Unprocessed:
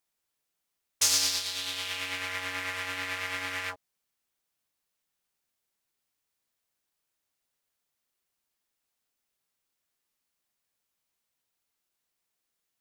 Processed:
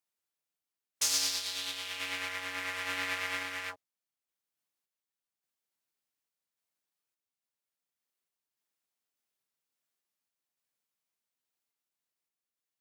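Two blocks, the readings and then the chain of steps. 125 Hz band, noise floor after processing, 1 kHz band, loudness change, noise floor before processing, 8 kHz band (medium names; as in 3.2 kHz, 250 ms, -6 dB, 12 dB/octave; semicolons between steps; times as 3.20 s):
-7.0 dB, under -85 dBFS, -2.5 dB, -3.5 dB, -83 dBFS, -4.5 dB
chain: high-pass 110 Hz; spectral noise reduction 6 dB; random-step tremolo; trim +1 dB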